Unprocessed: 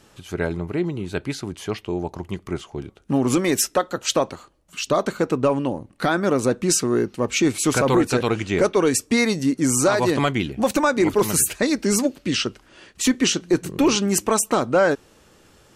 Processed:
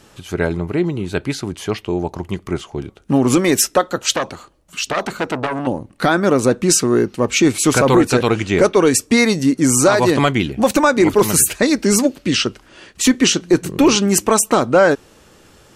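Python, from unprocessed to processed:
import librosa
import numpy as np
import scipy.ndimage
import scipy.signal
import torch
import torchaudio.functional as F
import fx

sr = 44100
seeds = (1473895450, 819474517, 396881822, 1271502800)

y = fx.transformer_sat(x, sr, knee_hz=1600.0, at=(4.15, 5.67))
y = F.gain(torch.from_numpy(y), 5.5).numpy()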